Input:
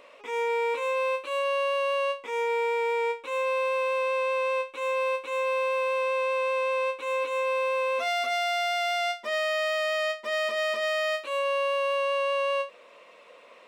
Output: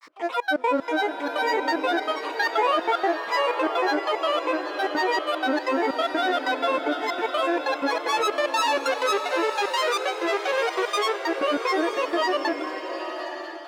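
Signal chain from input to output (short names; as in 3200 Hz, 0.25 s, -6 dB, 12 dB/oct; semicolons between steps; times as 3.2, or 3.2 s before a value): HPF 300 Hz; bell 850 Hz +14 dB 0.35 oct; grains, pitch spread up and down by 12 st; step gate "x.xxx.x.xx.xxx." 188 bpm -24 dB; bloom reverb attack 1 s, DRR 6 dB; gain +3 dB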